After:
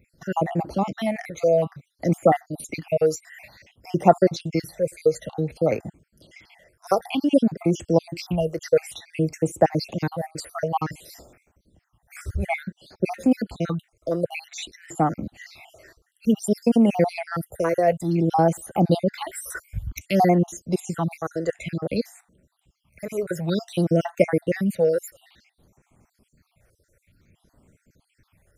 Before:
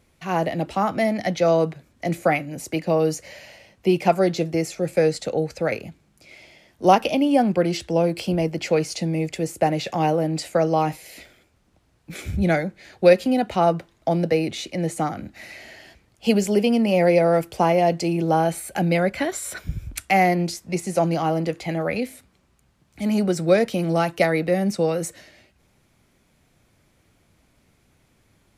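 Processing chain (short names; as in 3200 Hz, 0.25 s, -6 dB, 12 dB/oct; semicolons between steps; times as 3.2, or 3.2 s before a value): random spectral dropouts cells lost 52%; 21.27–21.82 synth low-pass 7300 Hz, resonance Q 2.1; phaser stages 6, 0.55 Hz, lowest notch 210–4400 Hz; gain +3 dB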